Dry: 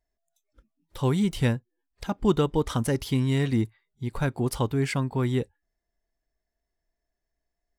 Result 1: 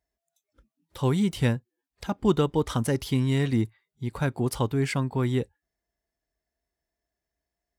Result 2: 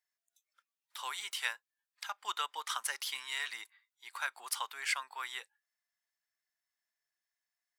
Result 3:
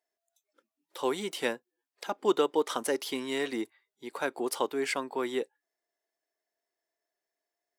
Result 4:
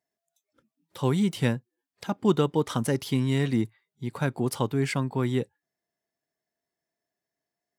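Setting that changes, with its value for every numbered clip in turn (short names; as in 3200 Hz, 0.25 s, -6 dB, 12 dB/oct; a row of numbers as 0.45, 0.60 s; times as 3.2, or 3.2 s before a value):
HPF, cutoff: 46, 1100, 340, 120 Hz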